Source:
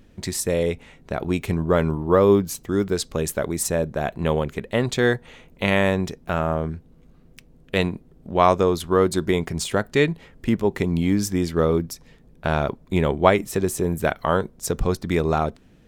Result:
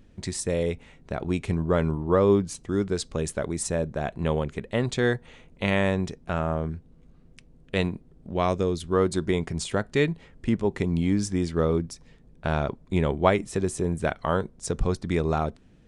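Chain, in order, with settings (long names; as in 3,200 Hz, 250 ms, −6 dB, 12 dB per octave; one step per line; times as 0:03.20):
low-shelf EQ 200 Hz +4 dB
downsampling to 22,050 Hz
0:08.32–0:08.92: parametric band 990 Hz −4.5 dB → −12.5 dB 1.4 octaves
level −5 dB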